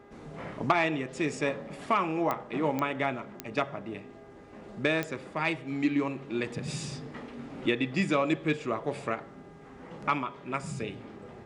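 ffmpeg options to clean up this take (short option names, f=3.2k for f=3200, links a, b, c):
-af "adeclick=t=4,bandreject=f=405:t=h:w=4,bandreject=f=810:t=h:w=4,bandreject=f=1.215k:t=h:w=4,bandreject=f=1.62k:t=h:w=4,bandreject=f=2.025k:t=h:w=4"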